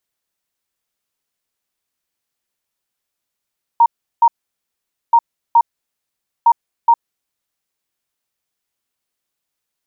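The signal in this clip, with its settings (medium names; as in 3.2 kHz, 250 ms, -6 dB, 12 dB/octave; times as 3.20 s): beep pattern sine 933 Hz, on 0.06 s, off 0.36 s, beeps 2, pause 0.85 s, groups 3, -6 dBFS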